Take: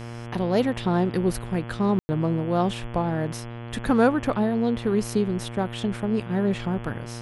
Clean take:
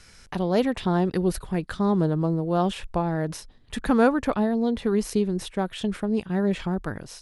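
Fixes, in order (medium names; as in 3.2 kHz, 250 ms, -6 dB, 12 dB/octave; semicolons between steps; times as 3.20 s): de-hum 117.8 Hz, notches 29; room tone fill 1.99–2.09 s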